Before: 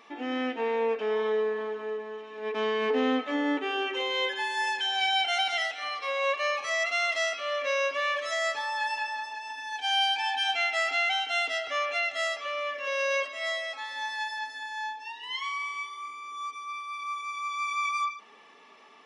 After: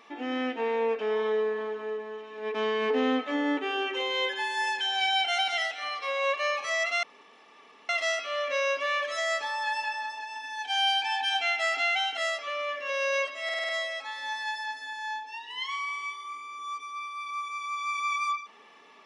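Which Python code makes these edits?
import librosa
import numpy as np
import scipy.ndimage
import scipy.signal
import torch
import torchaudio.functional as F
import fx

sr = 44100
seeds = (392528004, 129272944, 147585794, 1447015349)

y = fx.edit(x, sr, fx.insert_room_tone(at_s=7.03, length_s=0.86),
    fx.cut(start_s=11.31, length_s=0.84),
    fx.stutter(start_s=13.42, slice_s=0.05, count=6), tone=tone)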